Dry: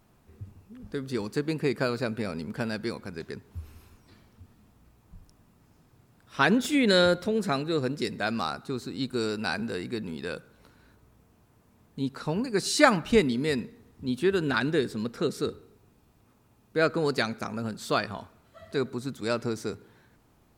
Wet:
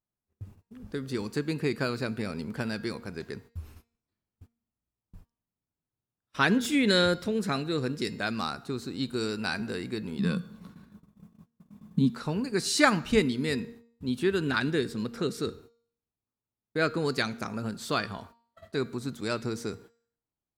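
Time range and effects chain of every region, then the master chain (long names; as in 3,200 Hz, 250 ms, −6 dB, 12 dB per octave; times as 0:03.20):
0:10.19–0:12.10: parametric band 170 Hz +13 dB 0.56 octaves + hollow resonant body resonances 210/1,100/3,500 Hz, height 13 dB, ringing for 65 ms
whole clip: noise gate −48 dBFS, range −32 dB; hum removal 233.1 Hz, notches 33; dynamic equaliser 640 Hz, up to −5 dB, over −37 dBFS, Q 1.1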